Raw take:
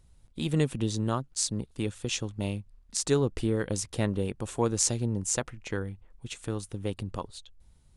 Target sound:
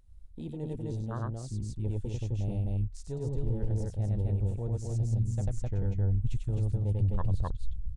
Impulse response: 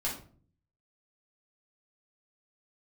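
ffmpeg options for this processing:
-af "aecho=1:1:96.21|259.5:0.708|0.708,areverse,acompressor=threshold=0.02:ratio=20,areverse,asubboost=boost=11.5:cutoff=87,asoftclip=type=tanh:threshold=0.0944,afwtdn=0.01,volume=1.5"

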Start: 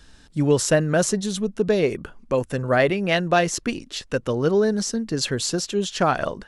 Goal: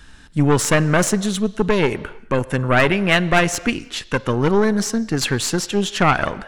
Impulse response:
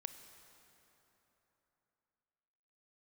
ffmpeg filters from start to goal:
-filter_complex "[0:a]aeval=exprs='0.501*(cos(1*acos(clip(val(0)/0.501,-1,1)))-cos(1*PI/2))+0.112*(cos(4*acos(clip(val(0)/0.501,-1,1)))-cos(4*PI/2))+0.1*(cos(5*acos(clip(val(0)/0.501,-1,1)))-cos(5*PI/2))+0.0251*(cos(7*acos(clip(val(0)/0.501,-1,1)))-cos(7*PI/2))':c=same,asplit=2[s0][s1];[s1]acrossover=split=550 4900:gain=0.251 1 0.178[s2][s3][s4];[s2][s3][s4]amix=inputs=3:normalize=0[s5];[1:a]atrim=start_sample=2205,afade=t=out:st=0.38:d=0.01,atrim=end_sample=17199[s6];[s5][s6]afir=irnorm=-1:irlink=0,volume=0.944[s7];[s0][s7]amix=inputs=2:normalize=0"

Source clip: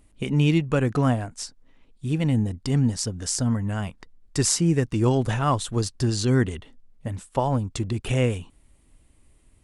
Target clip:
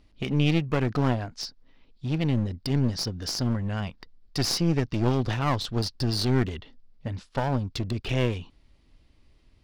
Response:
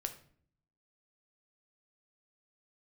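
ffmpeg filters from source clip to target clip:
-af "highshelf=f=6500:t=q:w=3:g=-11.5,aeval=exprs='clip(val(0),-1,0.0447)':c=same,volume=0.841"

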